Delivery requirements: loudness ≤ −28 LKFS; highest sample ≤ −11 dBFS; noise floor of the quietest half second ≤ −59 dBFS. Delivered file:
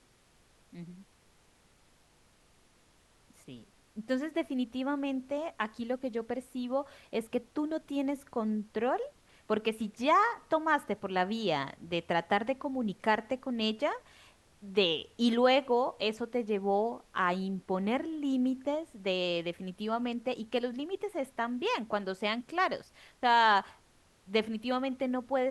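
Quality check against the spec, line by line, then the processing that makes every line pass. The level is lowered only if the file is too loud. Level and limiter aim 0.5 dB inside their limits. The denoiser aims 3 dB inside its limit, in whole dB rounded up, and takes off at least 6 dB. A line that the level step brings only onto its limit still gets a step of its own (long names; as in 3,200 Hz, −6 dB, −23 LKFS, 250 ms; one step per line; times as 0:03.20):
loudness −32.0 LKFS: in spec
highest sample −13.5 dBFS: in spec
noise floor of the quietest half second −65 dBFS: in spec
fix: no processing needed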